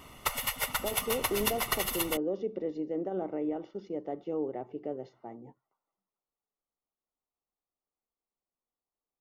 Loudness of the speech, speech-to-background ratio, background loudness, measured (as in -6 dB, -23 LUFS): -35.5 LUFS, -4.0 dB, -31.5 LUFS